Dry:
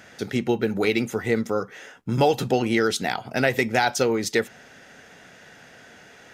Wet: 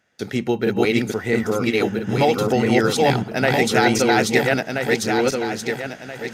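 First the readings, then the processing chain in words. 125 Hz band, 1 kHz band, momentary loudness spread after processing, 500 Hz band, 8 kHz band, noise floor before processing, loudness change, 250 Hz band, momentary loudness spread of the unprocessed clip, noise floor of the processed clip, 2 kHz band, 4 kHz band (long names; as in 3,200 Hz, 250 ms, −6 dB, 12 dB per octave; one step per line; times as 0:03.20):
+5.5 dB, +5.0 dB, 9 LU, +5.0 dB, +5.5 dB, −49 dBFS, +4.0 dB, +5.5 dB, 8 LU, −38 dBFS, +5.5 dB, +5.5 dB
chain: feedback delay that plays each chunk backwards 664 ms, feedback 56%, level 0 dB
noise gate with hold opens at −31 dBFS
level +1.5 dB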